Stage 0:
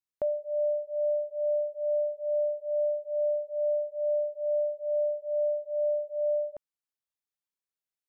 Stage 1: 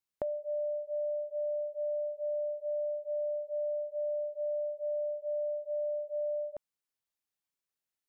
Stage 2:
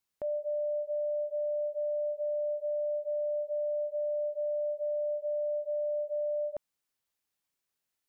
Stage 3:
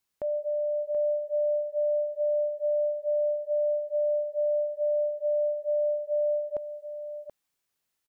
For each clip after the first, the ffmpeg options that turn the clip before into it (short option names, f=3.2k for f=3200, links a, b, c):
-af "acompressor=threshold=-34dB:ratio=6,volume=1.5dB"
-af "alimiter=level_in=9.5dB:limit=-24dB:level=0:latency=1,volume=-9.5dB,volume=5dB"
-af "aecho=1:1:730:0.355,volume=3.5dB"